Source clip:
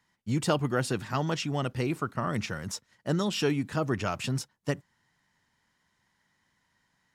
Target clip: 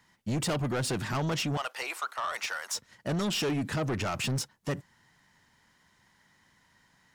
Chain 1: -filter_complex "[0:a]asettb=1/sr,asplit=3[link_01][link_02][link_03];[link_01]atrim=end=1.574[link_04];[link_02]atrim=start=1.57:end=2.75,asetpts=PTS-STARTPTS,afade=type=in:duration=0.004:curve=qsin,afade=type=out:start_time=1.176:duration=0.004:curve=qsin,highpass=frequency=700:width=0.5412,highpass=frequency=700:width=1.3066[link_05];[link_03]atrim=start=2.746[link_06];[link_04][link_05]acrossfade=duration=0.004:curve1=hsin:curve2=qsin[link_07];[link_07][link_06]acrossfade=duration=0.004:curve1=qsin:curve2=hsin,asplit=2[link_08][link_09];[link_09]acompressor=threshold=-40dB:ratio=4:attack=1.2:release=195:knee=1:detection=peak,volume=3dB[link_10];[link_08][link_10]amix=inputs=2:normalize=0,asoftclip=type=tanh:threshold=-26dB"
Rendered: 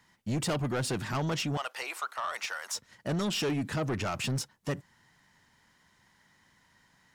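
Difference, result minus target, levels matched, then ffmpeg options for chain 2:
downward compressor: peak gain reduction +6.5 dB
-filter_complex "[0:a]asettb=1/sr,asplit=3[link_01][link_02][link_03];[link_01]atrim=end=1.574[link_04];[link_02]atrim=start=1.57:end=2.75,asetpts=PTS-STARTPTS,afade=type=in:duration=0.004:curve=qsin,afade=type=out:start_time=1.176:duration=0.004:curve=qsin,highpass=frequency=700:width=0.5412,highpass=frequency=700:width=1.3066[link_05];[link_03]atrim=start=2.746[link_06];[link_04][link_05]acrossfade=duration=0.004:curve1=hsin:curve2=qsin[link_07];[link_07][link_06]acrossfade=duration=0.004:curve1=qsin:curve2=hsin,asplit=2[link_08][link_09];[link_09]acompressor=threshold=-31.5dB:ratio=4:attack=1.2:release=195:knee=1:detection=peak,volume=3dB[link_10];[link_08][link_10]amix=inputs=2:normalize=0,asoftclip=type=tanh:threshold=-26dB"

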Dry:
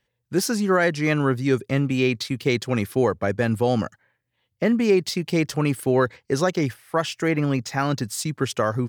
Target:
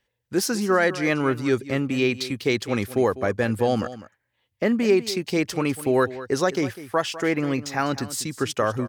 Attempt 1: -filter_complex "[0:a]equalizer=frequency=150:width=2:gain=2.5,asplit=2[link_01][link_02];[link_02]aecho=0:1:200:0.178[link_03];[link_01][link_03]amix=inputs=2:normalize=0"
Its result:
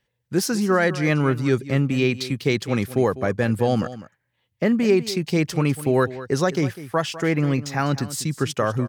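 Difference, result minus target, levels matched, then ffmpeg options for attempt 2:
125 Hz band +6.0 dB
-filter_complex "[0:a]equalizer=frequency=150:width=2:gain=-7.5,asplit=2[link_01][link_02];[link_02]aecho=0:1:200:0.178[link_03];[link_01][link_03]amix=inputs=2:normalize=0"

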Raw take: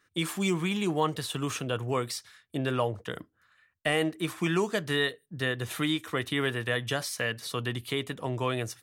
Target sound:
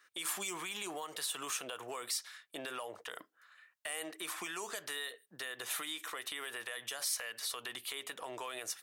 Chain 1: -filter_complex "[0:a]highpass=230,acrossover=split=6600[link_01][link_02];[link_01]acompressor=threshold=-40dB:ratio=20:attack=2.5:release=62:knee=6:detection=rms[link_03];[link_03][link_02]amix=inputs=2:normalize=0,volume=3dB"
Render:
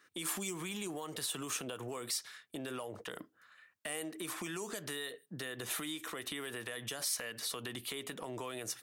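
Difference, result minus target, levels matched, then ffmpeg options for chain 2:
250 Hz band +8.0 dB
-filter_complex "[0:a]highpass=670,acrossover=split=6600[link_01][link_02];[link_01]acompressor=threshold=-40dB:ratio=20:attack=2.5:release=62:knee=6:detection=rms[link_03];[link_03][link_02]amix=inputs=2:normalize=0,volume=3dB"

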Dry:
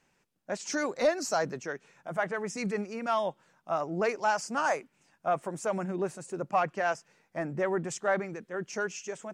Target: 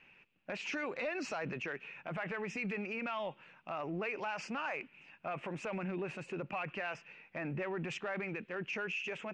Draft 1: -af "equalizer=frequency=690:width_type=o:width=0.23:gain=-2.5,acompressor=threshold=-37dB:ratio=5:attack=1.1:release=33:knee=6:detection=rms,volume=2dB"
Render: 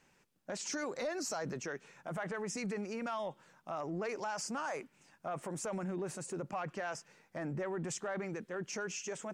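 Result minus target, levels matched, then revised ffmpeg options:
2,000 Hz band −4.5 dB
-af "lowpass=frequency=2600:width_type=q:width=6.9,equalizer=frequency=690:width_type=o:width=0.23:gain=-2.5,acompressor=threshold=-37dB:ratio=5:attack=1.1:release=33:knee=6:detection=rms,volume=2dB"

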